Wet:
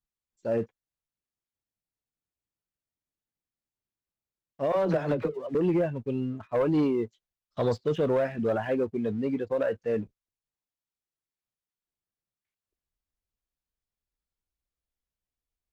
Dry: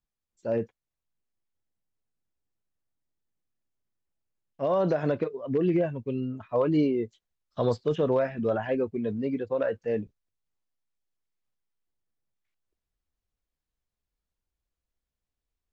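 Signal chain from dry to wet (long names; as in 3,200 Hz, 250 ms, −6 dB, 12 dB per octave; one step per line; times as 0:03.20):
leveller curve on the samples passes 1
0:04.72–0:05.55: all-pass dispersion lows, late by 50 ms, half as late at 370 Hz
asymmetric clip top −17.5 dBFS
level −3 dB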